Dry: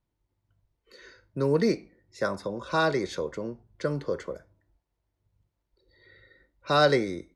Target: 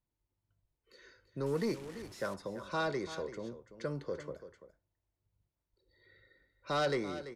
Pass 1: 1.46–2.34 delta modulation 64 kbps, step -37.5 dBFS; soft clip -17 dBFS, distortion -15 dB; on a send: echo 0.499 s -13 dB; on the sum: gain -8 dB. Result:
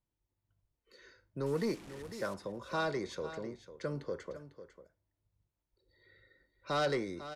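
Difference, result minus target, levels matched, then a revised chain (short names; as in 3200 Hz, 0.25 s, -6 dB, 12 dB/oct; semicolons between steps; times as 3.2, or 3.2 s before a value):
echo 0.162 s late
1.46–2.34 delta modulation 64 kbps, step -37.5 dBFS; soft clip -17 dBFS, distortion -15 dB; on a send: echo 0.337 s -13 dB; on the sum: gain -8 dB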